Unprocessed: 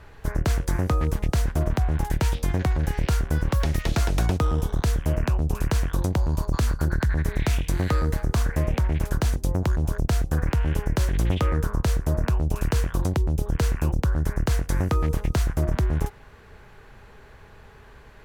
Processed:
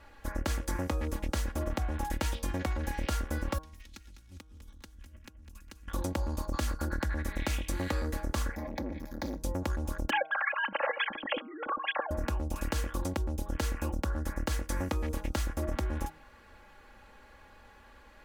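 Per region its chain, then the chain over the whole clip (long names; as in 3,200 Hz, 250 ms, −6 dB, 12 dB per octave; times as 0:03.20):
0:03.58–0:05.88: guitar amp tone stack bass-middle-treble 6-0-2 + compressor whose output falls as the input rises −39 dBFS, ratio −0.5 + repeating echo 203 ms, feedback 32%, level −11 dB
0:08.55–0:09.41: phaser with its sweep stopped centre 1,900 Hz, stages 8 + double-tracking delay 21 ms −9 dB + saturating transformer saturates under 330 Hz
0:10.10–0:12.11: three sine waves on the formant tracks + compressor whose output falls as the input rises −30 dBFS
whole clip: low-shelf EQ 180 Hz −7 dB; comb filter 3.6 ms, depth 79%; hum removal 157 Hz, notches 10; level −6.5 dB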